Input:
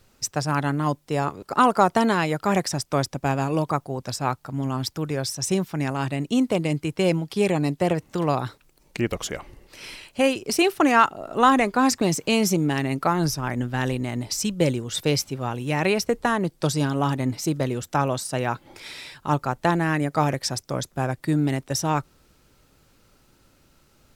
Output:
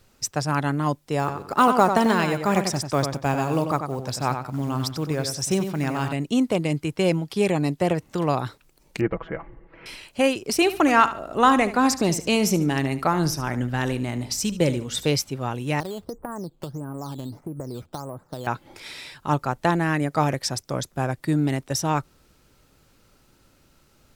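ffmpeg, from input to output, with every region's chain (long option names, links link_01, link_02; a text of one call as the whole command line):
ffmpeg -i in.wav -filter_complex "[0:a]asettb=1/sr,asplit=3[link_01][link_02][link_03];[link_01]atrim=end=1.194[link_04];[link_02]atrim=start=1.19:end=6.13,asetpts=PTS-STARTPTS,afade=type=in:duration=0.004:curve=qsin,afade=type=out:start_time=4.936:duration=0.004:curve=qsin,acrusher=bits=7:mode=log:mix=0:aa=0.000001,asplit=2[link_05][link_06];[link_06]adelay=93,lowpass=frequency=4900:poles=1,volume=-7dB,asplit=2[link_07][link_08];[link_08]adelay=93,lowpass=frequency=4900:poles=1,volume=0.25,asplit=2[link_09][link_10];[link_10]adelay=93,lowpass=frequency=4900:poles=1,volume=0.25[link_11];[link_05][link_07][link_09][link_11]amix=inputs=4:normalize=0,atrim=end_sample=217854[link_12];[link_03]atrim=start=6.126[link_13];[link_04][link_12]acrossfade=duration=0.004:curve1=hsin:curve2=qsin[link_14];[link_14][link_13]acrossfade=duration=0.004:curve1=qsin:curve2=hsin,asettb=1/sr,asplit=3[link_15][link_16][link_17];[link_15]atrim=end=9.014[link_18];[link_16]atrim=start=9.01:end=9.86,asetpts=PTS-STARTPTS,afade=type=in:duration=0.004:curve=qsin,afade=type=out:start_time=0.846:duration=0.004:curve=qsin,lowpass=frequency=1900:width=0.5412,lowpass=frequency=1900:width=1.3066,aecho=1:1:6.1:0.64,atrim=end_sample=37485[link_19];[link_17]atrim=start=9.856[link_20];[link_18][link_19]acrossfade=duration=0.004:curve1=hsin:curve2=qsin[link_21];[link_21][link_20]acrossfade=duration=0.004:curve1=qsin:curve2=hsin,asettb=1/sr,asplit=3[link_22][link_23][link_24];[link_22]atrim=end=10.554[link_25];[link_23]atrim=start=10.55:end=15.07,asetpts=PTS-STARTPTS,afade=type=in:duration=0.004:curve=qsin,afade=type=out:start_time=4.516:duration=0.004:curve=qsin,aeval=exprs='val(0)+0.00316*(sin(2*PI*60*n/s)+sin(2*PI*2*60*n/s)/2+sin(2*PI*3*60*n/s)/3+sin(2*PI*4*60*n/s)/4+sin(2*PI*5*60*n/s)/5)':channel_layout=same,aecho=1:1:73|146|219:0.2|0.0619|0.0192,atrim=end_sample=199332[link_26];[link_24]atrim=start=15.066[link_27];[link_25][link_26]acrossfade=duration=0.004:curve1=hsin:curve2=qsin[link_28];[link_28][link_27]acrossfade=duration=0.004:curve1=qsin:curve2=hsin,asettb=1/sr,asplit=3[link_29][link_30][link_31];[link_29]atrim=end=15.804[link_32];[link_30]atrim=start=15.8:end=18.47,asetpts=PTS-STARTPTS,afade=type=in:duration=0.004:curve=qsin,afade=type=out:start_time=2.666:duration=0.004:curve=qsin,lowpass=frequency=1300:width=0.5412,lowpass=frequency=1300:width=1.3066,acompressor=threshold=-28dB:ratio=12:attack=3.2:release=140:knee=1:detection=peak,acrusher=samples=8:mix=1:aa=0.000001:lfo=1:lforange=8:lforate=1.6[link_33];[link_31]atrim=start=18.466[link_34];[link_32][link_33]acrossfade=duration=0.004:curve1=hsin:curve2=qsin[link_35];[link_35][link_34]acrossfade=duration=0.004:curve1=qsin:curve2=hsin" out.wav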